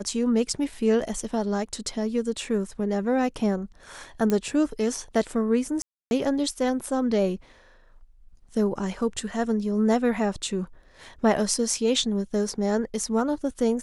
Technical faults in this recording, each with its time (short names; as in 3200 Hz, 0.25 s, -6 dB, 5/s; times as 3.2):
4.3 pop -12 dBFS
5.82–6.11 gap 0.291 s